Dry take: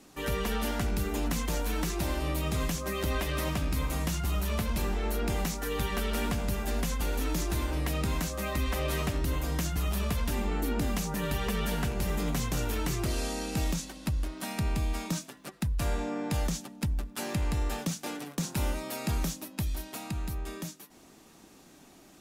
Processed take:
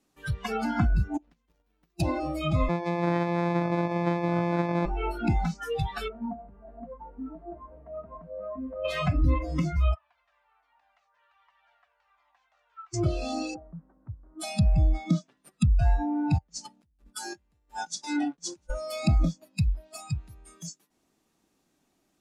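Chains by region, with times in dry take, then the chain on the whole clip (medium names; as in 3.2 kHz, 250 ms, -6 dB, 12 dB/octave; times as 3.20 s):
1.17–2.00 s: median filter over 5 samples + gate -27 dBFS, range -27 dB
2.69–4.86 s: sorted samples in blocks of 256 samples + high-pass 140 Hz + feedback delay 65 ms, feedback 51%, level -22.5 dB
6.08–8.85 s: four-pole ladder low-pass 1.4 kHz, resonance 20% + comb 4.4 ms, depth 42%
9.94–12.94 s: inverse Chebyshev high-pass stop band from 390 Hz + tape spacing loss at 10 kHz 41 dB + Shepard-style flanger falling 1.3 Hz
13.54–14.40 s: steep low-pass 1.4 kHz + compression 4:1, threshold -33 dBFS
16.38–18.70 s: compressor with a negative ratio -39 dBFS + expander -37 dBFS + delay 688 ms -21 dB
whole clip: spectral noise reduction 26 dB; low-pass that closes with the level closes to 2 kHz, closed at -32 dBFS; trim +9 dB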